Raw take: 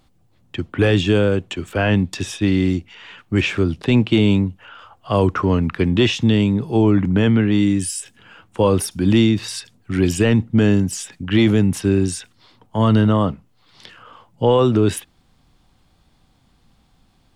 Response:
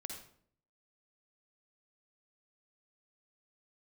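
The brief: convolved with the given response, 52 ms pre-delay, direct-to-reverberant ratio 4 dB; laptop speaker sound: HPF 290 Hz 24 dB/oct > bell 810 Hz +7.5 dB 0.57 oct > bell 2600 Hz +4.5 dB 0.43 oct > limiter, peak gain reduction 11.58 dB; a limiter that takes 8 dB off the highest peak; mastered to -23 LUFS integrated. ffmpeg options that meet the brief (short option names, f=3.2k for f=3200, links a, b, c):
-filter_complex "[0:a]alimiter=limit=-13.5dB:level=0:latency=1,asplit=2[a][b];[1:a]atrim=start_sample=2205,adelay=52[c];[b][c]afir=irnorm=-1:irlink=0,volume=-1.5dB[d];[a][d]amix=inputs=2:normalize=0,highpass=f=290:w=0.5412,highpass=f=290:w=1.3066,equalizer=f=810:t=o:w=0.57:g=7.5,equalizer=f=2.6k:t=o:w=0.43:g=4.5,volume=6.5dB,alimiter=limit=-13.5dB:level=0:latency=1"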